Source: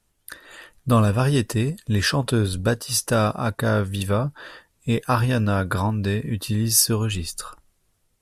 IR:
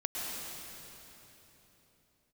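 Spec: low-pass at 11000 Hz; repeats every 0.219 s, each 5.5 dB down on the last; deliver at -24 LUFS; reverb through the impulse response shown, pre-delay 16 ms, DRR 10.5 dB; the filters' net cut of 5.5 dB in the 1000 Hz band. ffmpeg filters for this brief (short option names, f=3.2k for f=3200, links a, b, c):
-filter_complex "[0:a]lowpass=11k,equalizer=f=1k:t=o:g=-7.5,aecho=1:1:219|438|657|876|1095|1314|1533:0.531|0.281|0.149|0.079|0.0419|0.0222|0.0118,asplit=2[a][b];[1:a]atrim=start_sample=2205,adelay=16[c];[b][c]afir=irnorm=-1:irlink=0,volume=-15.5dB[d];[a][d]amix=inputs=2:normalize=0,volume=-2.5dB"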